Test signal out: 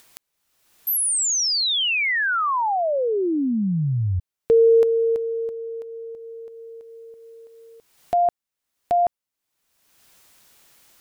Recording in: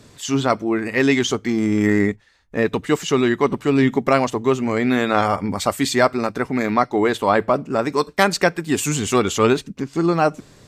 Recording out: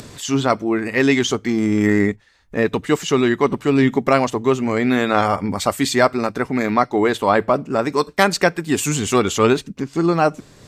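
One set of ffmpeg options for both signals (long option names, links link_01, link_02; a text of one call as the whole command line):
ffmpeg -i in.wav -af "acompressor=mode=upward:threshold=-31dB:ratio=2.5,volume=1dB" out.wav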